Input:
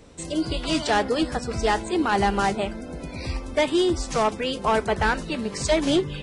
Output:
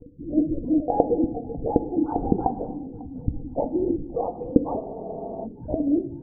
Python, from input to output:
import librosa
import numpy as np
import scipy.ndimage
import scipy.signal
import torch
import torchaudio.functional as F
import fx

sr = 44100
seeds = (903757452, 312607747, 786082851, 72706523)

p1 = fx.low_shelf(x, sr, hz=160.0, db=8.5)
p2 = np.sign(p1) * np.maximum(np.abs(p1) - 10.0 ** (-52.0 / 20.0), 0.0)
p3 = fx.spec_topn(p2, sr, count=8)
p4 = fx.lpc_vocoder(p3, sr, seeds[0], excitation='whisper', order=8)
p5 = scipy.signal.sosfilt(scipy.signal.butter(4, 1000.0, 'lowpass', fs=sr, output='sos'), p4)
p6 = fx.rev_gated(p5, sr, seeds[1], gate_ms=350, shape='falling', drr_db=10.0)
p7 = fx.rider(p6, sr, range_db=10, speed_s=2.0)
p8 = fx.small_body(p7, sr, hz=(300.0, 480.0, 710.0), ring_ms=40, db=15)
p9 = p8 + fx.echo_feedback(p8, sr, ms=546, feedback_pct=43, wet_db=-23.5, dry=0)
p10 = fx.spec_freeze(p9, sr, seeds[2], at_s=4.87, hold_s=0.57)
y = p10 * 10.0 ** (-14.0 / 20.0)